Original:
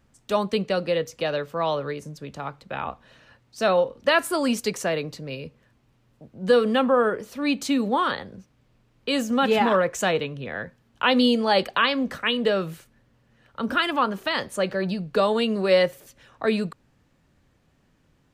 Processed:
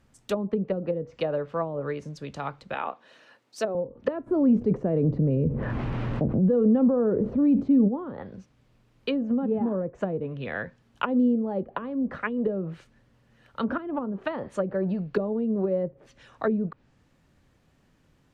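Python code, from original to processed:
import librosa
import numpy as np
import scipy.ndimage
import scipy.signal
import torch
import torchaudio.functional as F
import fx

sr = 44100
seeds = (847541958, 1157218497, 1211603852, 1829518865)

y = fx.cheby1_highpass(x, sr, hz=340.0, order=2, at=(2.74, 3.75))
y = fx.env_flatten(y, sr, amount_pct=70, at=(4.26, 7.87), fade=0.02)
y = fx.env_lowpass_down(y, sr, base_hz=340.0, full_db=-19.5)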